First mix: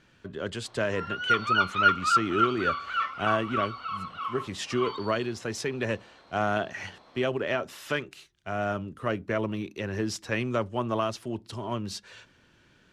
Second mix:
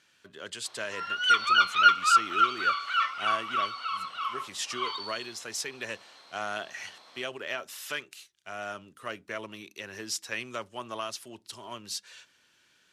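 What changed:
speech -6.5 dB; master: add tilt EQ +4 dB/octave

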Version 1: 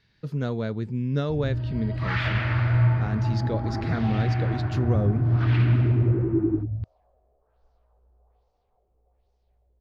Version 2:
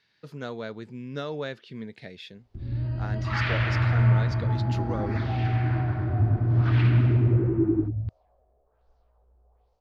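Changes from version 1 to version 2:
speech: add high-pass 620 Hz 6 dB/octave; background: entry +1.25 s

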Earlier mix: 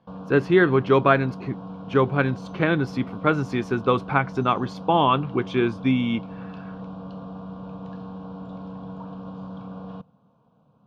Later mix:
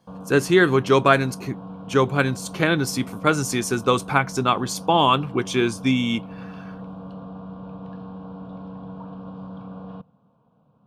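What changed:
speech: remove distance through air 330 m; background: add distance through air 120 m

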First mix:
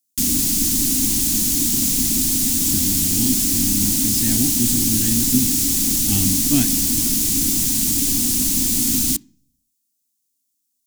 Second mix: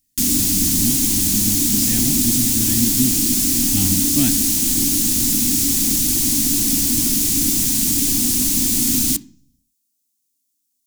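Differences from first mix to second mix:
speech: entry -2.35 s; background: send +8.0 dB

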